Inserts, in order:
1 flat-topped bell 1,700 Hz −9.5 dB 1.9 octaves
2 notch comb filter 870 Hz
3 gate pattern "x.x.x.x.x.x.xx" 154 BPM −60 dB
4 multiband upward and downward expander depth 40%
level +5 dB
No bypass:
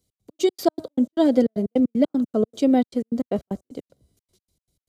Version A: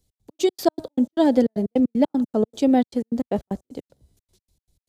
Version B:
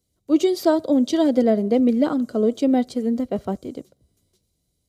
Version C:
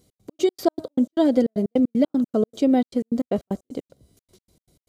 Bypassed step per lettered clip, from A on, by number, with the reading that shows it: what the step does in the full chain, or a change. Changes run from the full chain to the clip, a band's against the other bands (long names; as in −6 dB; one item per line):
2, 1 kHz band +2.0 dB
3, change in crest factor −3.0 dB
4, change in momentary loudness spread −2 LU